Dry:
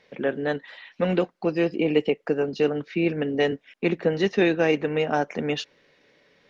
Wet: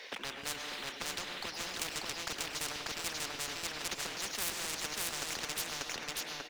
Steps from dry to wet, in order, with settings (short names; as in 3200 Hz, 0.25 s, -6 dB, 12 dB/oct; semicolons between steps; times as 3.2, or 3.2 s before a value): Bessel high-pass 460 Hz, order 8; high shelf 2500 Hz +9.5 dB; sample leveller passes 1; hard clip -17.5 dBFS, distortion -14 dB; chopper 2.3 Hz, depth 65%, duty 35%; feedback echo 0.59 s, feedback 17%, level -4 dB; on a send at -13 dB: reverb RT60 0.95 s, pre-delay 95 ms; on the sum: spectral compressor 10:1; gain -4.5 dB